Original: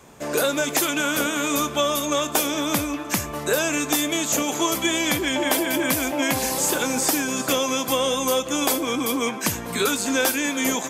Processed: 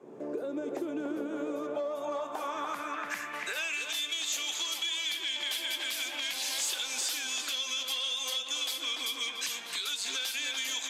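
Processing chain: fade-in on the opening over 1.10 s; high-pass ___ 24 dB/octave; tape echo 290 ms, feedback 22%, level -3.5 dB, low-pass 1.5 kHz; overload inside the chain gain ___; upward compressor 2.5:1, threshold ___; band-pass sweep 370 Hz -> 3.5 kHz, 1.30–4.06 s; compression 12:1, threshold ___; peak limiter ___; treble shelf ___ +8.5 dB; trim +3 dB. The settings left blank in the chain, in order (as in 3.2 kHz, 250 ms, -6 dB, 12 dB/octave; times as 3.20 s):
110 Hz, 17 dB, -26 dBFS, -34 dBFS, -27.5 dBFS, 7.1 kHz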